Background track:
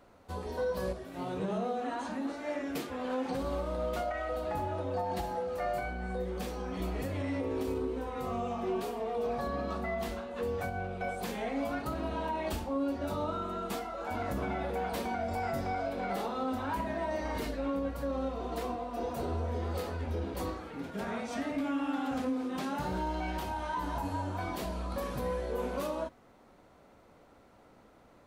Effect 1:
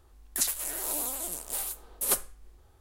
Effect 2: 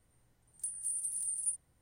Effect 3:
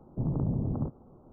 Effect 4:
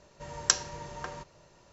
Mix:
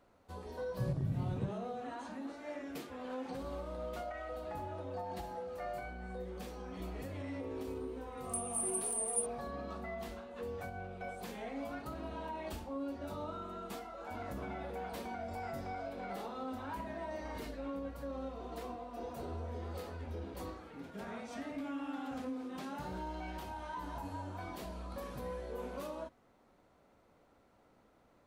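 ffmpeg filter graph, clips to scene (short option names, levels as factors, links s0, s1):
-filter_complex "[0:a]volume=0.398[s0];[3:a]equalizer=f=120:t=o:w=1.3:g=11.5,atrim=end=1.32,asetpts=PTS-STARTPTS,volume=0.178,afade=t=in:d=0.004:c=hsin,afade=t=out:st=1.316:d=0.004:c=hsin,adelay=610[s1];[2:a]atrim=end=1.81,asetpts=PTS-STARTPTS,volume=0.944,afade=t=in:d=0.004:c=hsin,afade=t=out:st=1.806:d=0.004:c=hsin,adelay=339570S[s2];[s0][s1][s2]amix=inputs=3:normalize=0"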